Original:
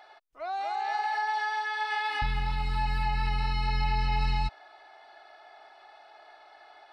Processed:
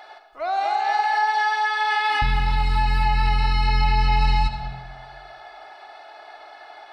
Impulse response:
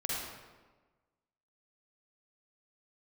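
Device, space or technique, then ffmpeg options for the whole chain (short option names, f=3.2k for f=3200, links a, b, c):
ducked reverb: -filter_complex "[0:a]asplit=3[a][b][c];[1:a]atrim=start_sample=2205[d];[b][d]afir=irnorm=-1:irlink=0[e];[c]apad=whole_len=305180[f];[e][f]sidechaincompress=threshold=-30dB:ratio=8:attack=16:release=286,volume=-7dB[g];[a][g]amix=inputs=2:normalize=0,volume=6.5dB"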